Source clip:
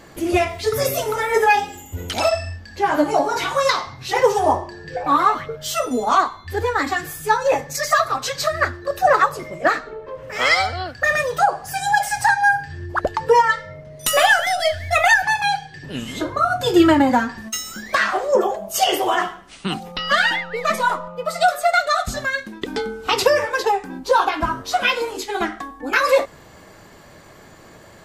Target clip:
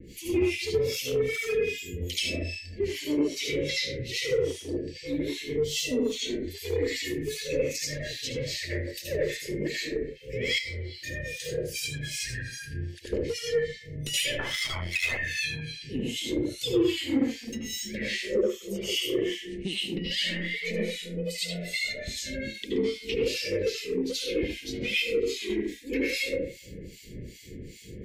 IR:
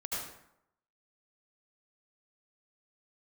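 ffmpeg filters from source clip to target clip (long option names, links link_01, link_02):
-filter_complex "[0:a]asuperstop=centerf=1000:order=12:qfactor=0.62,lowshelf=frequency=320:gain=6[link_01];[1:a]atrim=start_sample=2205[link_02];[link_01][link_02]afir=irnorm=-1:irlink=0,asplit=2[link_03][link_04];[link_04]asoftclip=type=tanh:threshold=-18.5dB,volume=-8dB[link_05];[link_03][link_05]amix=inputs=2:normalize=0,asettb=1/sr,asplit=3[link_06][link_07][link_08];[link_06]atrim=end=10.584[link_09];[link_07]atrim=start=10.58:end=11.4,asetpts=PTS-STARTPTS,afade=type=in:duration=0.004:curve=qsin,afade=type=out:start_time=0.816:duration=0.004:curve=qsin,acompressor=threshold=-25dB:ratio=10[link_10];[link_08]atrim=start=11.396[link_11];[link_09][link_10]acrossfade=duration=0.004:curve1=hsin:curve2=qsin[link_12];[link_12][link_11]acrossfade=duration=0.004:curve1=qsin:curve2=hsin,asettb=1/sr,asplit=3[link_13][link_14][link_15];[link_13]atrim=end=14.394[link_16];[link_14]atrim=start=14.39:end=15.17,asetpts=PTS-STARTPTS,afade=type=in:duration=0.004:curve=qsin,afade=type=out:start_time=0.776:duration=0.004:curve=qsin,aeval=exprs='0.376*(cos(1*acos(clip(val(0)/0.376,-1,1)))-cos(1*PI/2))+0.0596*(cos(4*acos(clip(val(0)/0.376,-1,1)))-cos(4*PI/2))+0.015*(cos(8*acos(clip(val(0)/0.376,-1,1)))-cos(8*PI/2))':channel_layout=same[link_17];[link_15]atrim=start=15.166[link_18];[link_16][link_17]acrossfade=duration=0.004:curve1=hsin:curve2=qsin[link_19];[link_19][link_18]acrossfade=duration=0.004:curve1=qsin:curve2=hsin,acrossover=split=320|1900|6700[link_20][link_21][link_22][link_23];[link_20]acompressor=threshold=-34dB:ratio=4[link_24];[link_21]acompressor=threshold=-24dB:ratio=4[link_25];[link_22]acompressor=threshold=-26dB:ratio=4[link_26];[link_23]acompressor=threshold=-41dB:ratio=4[link_27];[link_24][link_25][link_26][link_27]amix=inputs=4:normalize=0,asettb=1/sr,asplit=3[link_28][link_29][link_30];[link_28]atrim=end=0.924[link_31];[link_29]atrim=start=0.92:end=1.57,asetpts=PTS-STARTPTS,afade=type=in:duration=0.004:curve=qsin,afade=type=out:start_time=0.646:duration=0.004:curve=qsin,volume=18dB,asoftclip=hard,volume=-18dB[link_32];[link_30]atrim=start=1.566[link_33];[link_31][link_32]acrossfade=duration=0.004:curve1=hsin:curve2=qsin[link_34];[link_34][link_33]acrossfade=duration=0.004:curve1=qsin:curve2=hsin,acrossover=split=1800[link_35][link_36];[link_35]aeval=exprs='val(0)*(1-1/2+1/2*cos(2*PI*2.5*n/s))':channel_layout=same[link_37];[link_36]aeval=exprs='val(0)*(1-1/2-1/2*cos(2*PI*2.5*n/s))':channel_layout=same[link_38];[link_37][link_38]amix=inputs=2:normalize=0,adynamicequalizer=threshold=0.00708:dfrequency=4300:dqfactor=0.7:tfrequency=4300:tqfactor=0.7:attack=5:release=100:ratio=0.375:range=2.5:mode=cutabove:tftype=highshelf"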